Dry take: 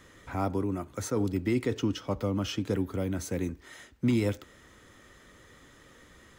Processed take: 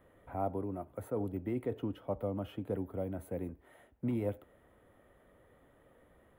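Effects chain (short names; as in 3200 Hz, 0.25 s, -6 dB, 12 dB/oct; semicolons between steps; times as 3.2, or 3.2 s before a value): EQ curve 350 Hz 0 dB, 680 Hz +9 dB, 1100 Hz -2 dB, 1800 Hz -6 dB, 3200 Hz -10 dB, 5700 Hz -30 dB, 11000 Hz -1 dB; gain -8.5 dB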